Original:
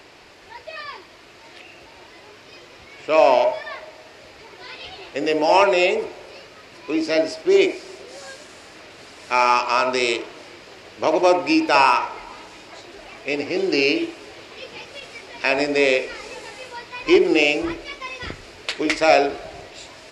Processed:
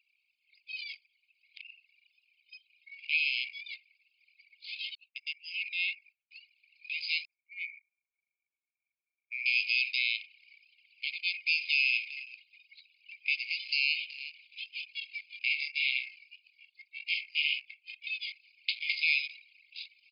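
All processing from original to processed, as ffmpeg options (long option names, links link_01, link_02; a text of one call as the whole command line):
ffmpeg -i in.wav -filter_complex "[0:a]asettb=1/sr,asplit=3[link_01][link_02][link_03];[link_01]atrim=end=4.954[link_04];[link_02]atrim=start=4.95:end=6.31,asetpts=PTS-STARTPTS,afade=type=in:duration=0.004:curve=qsin,afade=type=out:start_time=1.356:duration=0.004:curve=qsin,agate=range=-33dB:threshold=-33dB:ratio=3:release=100:detection=peak,acompressor=threshold=-37dB:ratio=1.5:attack=3.2:release=140:knee=1:detection=peak[link_05];[link_03]atrim=start=6.306[link_06];[link_04][link_05]acrossfade=duration=0.004:curve1=hsin:curve2=qsin[link_07];[link_07][link_06]acrossfade=duration=0.004:curve1=qsin:curve2=hsin,asettb=1/sr,asplit=3[link_08][link_09][link_10];[link_08]atrim=end=7.254[link_11];[link_09]atrim=start=7.25:end=9.46,asetpts=PTS-STARTPTS,afade=type=in:duration=0.004:curve=qsin,afade=type=out:start_time=2.206:duration=0.004:curve=qsin,asplit=3[link_12][link_13][link_14];[link_12]bandpass=frequency=300:width_type=q:width=8,volume=0dB[link_15];[link_13]bandpass=frequency=870:width_type=q:width=8,volume=-6dB[link_16];[link_14]bandpass=frequency=2240:width_type=q:width=8,volume=-9dB[link_17];[link_15][link_16][link_17]amix=inputs=3:normalize=0,aecho=1:1:42|58|135:0.355|0.188|0.237,atrim=end_sample=97461,adynamicequalizer=threshold=0.00631:dfrequency=1900:dqfactor=0.7:tfrequency=1900:tqfactor=0.7:attack=5:release=100:ratio=0.375:range=2:mode=cutabove:tftype=highshelf[link_18];[link_10]atrim=start=9.456[link_19];[link_11][link_18]acrossfade=duration=0.004:curve1=hsin:curve2=qsin[link_20];[link_20][link_19]acrossfade=duration=0.004:curve1=qsin:curve2=hsin,asettb=1/sr,asplit=3[link_21][link_22][link_23];[link_21]atrim=end=11.164[link_24];[link_22]atrim=start=11.16:end=14.71,asetpts=PTS-STARTPTS,afade=type=in:duration=0.004:curve=qsin,afade=type=out:start_time=3.546:duration=0.004:curve=qsin,equalizer=frequency=440:width=0.71:gain=-11.5,aecho=1:1:375:0.112,atrim=end_sample=156555[link_25];[link_23]atrim=start=14.706[link_26];[link_24][link_25]acrossfade=duration=0.004:curve1=hsin:curve2=qsin[link_27];[link_27][link_26]acrossfade=duration=0.004:curve1=qsin:curve2=hsin,asettb=1/sr,asplit=3[link_28][link_29][link_30];[link_28]atrim=end=15.394[link_31];[link_29]atrim=start=15.39:end=18.07,asetpts=PTS-STARTPTS,afade=type=in:duration=0.004:curve=qsin,afade=type=out:start_time=2.676:duration=0.004:curve=qsin,asplit=2[link_32][link_33];[link_33]adelay=48,volume=-11dB[link_34];[link_32][link_34]amix=inputs=2:normalize=0,atrim=end_sample=118188,flanger=delay=15:depth=7.5:speed=1.8,aeval=exprs='val(0)*sin(2*PI*200*n/s)':channel_layout=same[link_35];[link_30]atrim=start=18.066[link_36];[link_31][link_35]acrossfade=duration=0.004:curve1=hsin:curve2=qsin[link_37];[link_37][link_36]acrossfade=duration=0.004:curve1=qsin:curve2=hsin,afftfilt=real='re*between(b*sr/4096,2100,5100)':imag='im*between(b*sr/4096,2100,5100)':win_size=4096:overlap=0.75,anlmdn=0.251,alimiter=limit=-16.5dB:level=0:latency=1:release=151" out.wav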